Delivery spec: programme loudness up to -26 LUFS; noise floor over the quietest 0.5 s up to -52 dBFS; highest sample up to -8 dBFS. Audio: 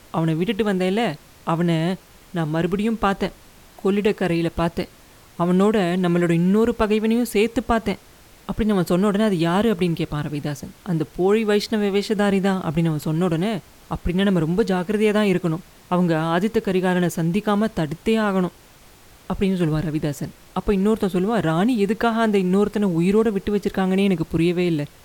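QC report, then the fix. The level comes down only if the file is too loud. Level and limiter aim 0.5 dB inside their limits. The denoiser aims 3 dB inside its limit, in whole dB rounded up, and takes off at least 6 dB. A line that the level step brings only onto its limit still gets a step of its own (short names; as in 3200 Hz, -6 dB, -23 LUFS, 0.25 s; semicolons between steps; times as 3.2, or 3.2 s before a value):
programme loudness -21.0 LUFS: fail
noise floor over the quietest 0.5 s -48 dBFS: fail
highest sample -7.0 dBFS: fail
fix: gain -5.5 dB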